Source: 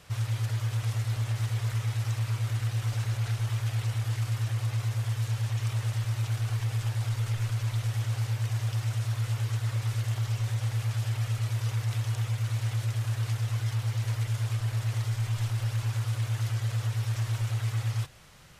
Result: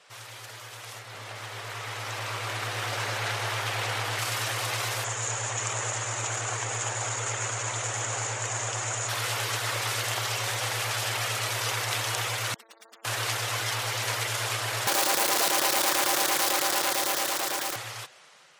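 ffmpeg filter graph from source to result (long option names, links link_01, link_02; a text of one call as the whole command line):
ffmpeg -i in.wav -filter_complex "[0:a]asettb=1/sr,asplit=3[link_01][link_02][link_03];[link_01]atrim=end=0.994[link_04];[link_02]atrim=start=0.99:end=4.19,asetpts=PTS-STARTPTS,afade=type=in:duration=0.004:curve=qsin,afade=type=out:start_time=3.196:duration=0.004:curve=qsin,equalizer=frequency=11000:width=0.3:gain=-7.5,aecho=1:1:157:0.596,atrim=end_sample=141120[link_05];[link_03]atrim=start=4.186[link_06];[link_04][link_05]acrossfade=duration=0.004:curve1=hsin:curve2=qsin[link_07];[link_07][link_06]acrossfade=duration=0.004:curve1=qsin:curve2=hsin,asettb=1/sr,asplit=3[link_08][link_09][link_10];[link_08]atrim=end=5.044[link_11];[link_09]atrim=start=5.04:end=9.09,asetpts=PTS-STARTPTS,afade=type=in:duration=0.004:curve=qsin,afade=type=out:start_time=4.046:duration=0.004:curve=qsin,lowpass=frequency=6900:width_type=q:width=9.9,equalizer=frequency=5000:width_type=o:width=1.7:gain=-13.5[link_12];[link_10]atrim=start=9.086[link_13];[link_11][link_12]acrossfade=duration=0.004:curve1=hsin:curve2=qsin[link_14];[link_14][link_13]acrossfade=duration=0.004:curve1=qsin:curve2=hsin,asettb=1/sr,asplit=3[link_15][link_16][link_17];[link_15]atrim=end=12.544[link_18];[link_16]atrim=start=12.54:end=13.05,asetpts=PTS-STARTPTS,afade=type=in:duration=0.004:curve=qsin,afade=type=out:start_time=0.506:duration=0.004:curve=qsin,aeval=exprs='(tanh(251*val(0)+0.15)-tanh(0.15))/251':channel_layout=same,aeval=exprs='abs(val(0))':channel_layout=same[link_19];[link_17]atrim=start=13.046[link_20];[link_18][link_19]acrossfade=duration=0.004:curve1=hsin:curve2=qsin[link_21];[link_21][link_20]acrossfade=duration=0.004:curve1=qsin:curve2=hsin,asettb=1/sr,asplit=3[link_22][link_23][link_24];[link_22]atrim=end=14.874[link_25];[link_23]atrim=start=14.87:end=17.76,asetpts=PTS-STARTPTS,afade=type=in:duration=0.004:curve=qsin,afade=type=out:start_time=2.886:duration=0.004:curve=qsin,asuperstop=centerf=2500:order=12:qfactor=1.9,aeval=exprs='(mod(42.2*val(0)+1,2)-1)/42.2':channel_layout=same[link_26];[link_24]atrim=start=17.756[link_27];[link_25][link_26]acrossfade=duration=0.004:curve1=hsin:curve2=qsin[link_28];[link_28][link_27]acrossfade=duration=0.004:curve1=qsin:curve2=hsin,highpass=450,afftfilt=real='re*gte(hypot(re,im),0.000794)':imag='im*gte(hypot(re,im),0.000794)':win_size=1024:overlap=0.75,dynaudnorm=framelen=850:gausssize=5:maxgain=14dB" out.wav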